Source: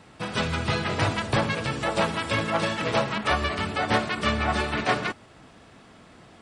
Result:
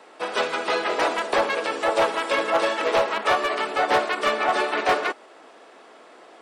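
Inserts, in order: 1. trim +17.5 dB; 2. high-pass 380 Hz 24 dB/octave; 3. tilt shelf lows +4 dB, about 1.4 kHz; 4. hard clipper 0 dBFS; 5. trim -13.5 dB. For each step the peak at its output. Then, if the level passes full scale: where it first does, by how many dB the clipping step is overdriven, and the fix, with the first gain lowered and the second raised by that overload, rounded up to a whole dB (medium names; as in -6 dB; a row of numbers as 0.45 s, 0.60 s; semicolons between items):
+9.0 dBFS, +7.5 dBFS, +8.5 dBFS, 0.0 dBFS, -13.5 dBFS; step 1, 8.5 dB; step 1 +8.5 dB, step 5 -4.5 dB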